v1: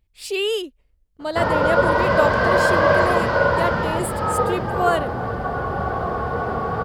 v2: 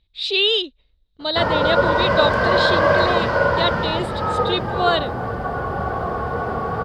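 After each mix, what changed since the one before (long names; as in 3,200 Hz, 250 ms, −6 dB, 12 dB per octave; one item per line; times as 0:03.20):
speech: add low-pass with resonance 3,800 Hz, resonance Q 15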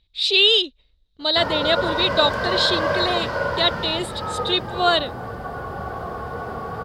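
background −6.5 dB
master: add high-shelf EQ 5,200 Hz +11.5 dB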